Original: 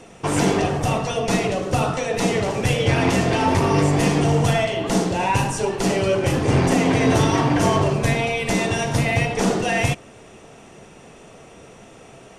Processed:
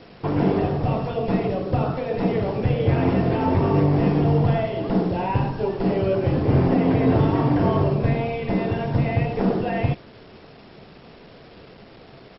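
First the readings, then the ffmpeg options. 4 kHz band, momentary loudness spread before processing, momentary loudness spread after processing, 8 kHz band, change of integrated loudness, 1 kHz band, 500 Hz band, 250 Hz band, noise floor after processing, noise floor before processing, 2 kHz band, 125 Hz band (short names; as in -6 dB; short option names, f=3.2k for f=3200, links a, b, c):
-12.5 dB, 4 LU, 6 LU, under -40 dB, -1.5 dB, -4.5 dB, -1.5 dB, 0.0 dB, -46 dBFS, -45 dBFS, -10.0 dB, +0.5 dB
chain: -filter_complex "[0:a]tiltshelf=f=1.1k:g=6.5,acrossover=split=2800[a][b];[b]acompressor=threshold=-40dB:ratio=4:attack=1:release=60[c];[a][c]amix=inputs=2:normalize=0,aresample=16000,acrusher=bits=6:mix=0:aa=0.000001,aresample=44100,volume=-6dB" -ar 22050 -c:a mp2 -b:a 32k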